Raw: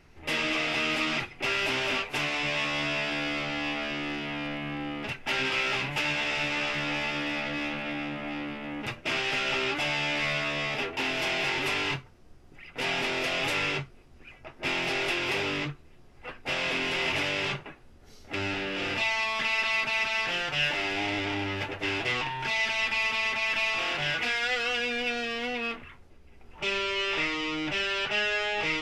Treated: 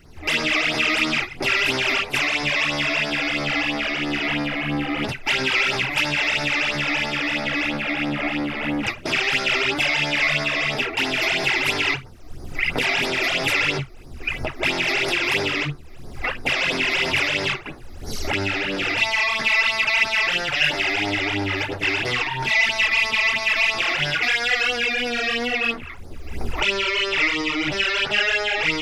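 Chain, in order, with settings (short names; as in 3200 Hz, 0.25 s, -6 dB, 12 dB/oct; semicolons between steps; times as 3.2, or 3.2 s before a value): recorder AGC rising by 26 dB/s; high shelf 7600 Hz +8.5 dB; phaser stages 12, 3 Hz, lowest notch 150–2900 Hz; dynamic EQ 2100 Hz, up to +5 dB, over -42 dBFS, Q 1.2; gain +7 dB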